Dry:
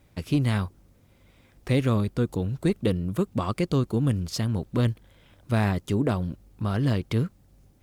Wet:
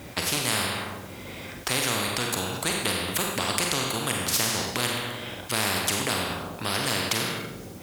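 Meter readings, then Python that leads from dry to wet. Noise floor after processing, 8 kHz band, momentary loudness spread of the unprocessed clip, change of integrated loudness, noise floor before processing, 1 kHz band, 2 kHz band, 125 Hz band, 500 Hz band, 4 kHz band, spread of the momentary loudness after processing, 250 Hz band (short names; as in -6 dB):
-41 dBFS, +18.5 dB, 6 LU, +0.5 dB, -60 dBFS, +6.0 dB, +10.0 dB, -10.5 dB, -2.0 dB, +14.0 dB, 10 LU, -7.0 dB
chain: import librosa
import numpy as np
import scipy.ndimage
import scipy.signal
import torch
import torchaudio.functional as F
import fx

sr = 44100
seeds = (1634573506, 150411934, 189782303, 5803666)

y = scipy.signal.sosfilt(scipy.signal.butter(2, 100.0, 'highpass', fs=sr, output='sos'), x)
y = fx.rev_schroeder(y, sr, rt60_s=0.72, comb_ms=32, drr_db=2.5)
y = fx.spectral_comp(y, sr, ratio=4.0)
y = y * librosa.db_to_amplitude(6.5)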